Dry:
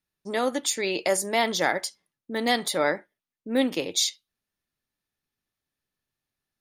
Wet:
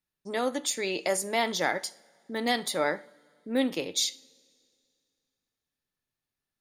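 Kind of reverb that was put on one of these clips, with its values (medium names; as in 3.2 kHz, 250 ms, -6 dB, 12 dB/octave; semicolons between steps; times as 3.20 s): two-slope reverb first 0.48 s, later 2.4 s, from -18 dB, DRR 16 dB; trim -3.5 dB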